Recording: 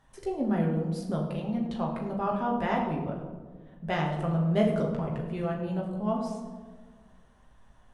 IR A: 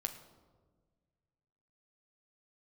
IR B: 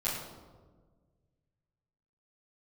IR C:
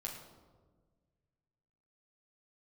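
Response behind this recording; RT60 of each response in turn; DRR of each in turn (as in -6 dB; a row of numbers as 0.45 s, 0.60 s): C; 1.5 s, 1.5 s, 1.5 s; 6.0 dB, -11.5 dB, -2.0 dB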